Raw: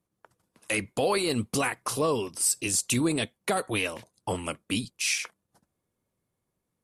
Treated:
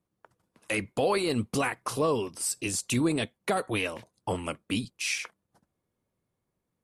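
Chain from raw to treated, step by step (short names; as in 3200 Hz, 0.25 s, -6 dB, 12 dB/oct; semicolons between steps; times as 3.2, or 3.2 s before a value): high shelf 4200 Hz -7 dB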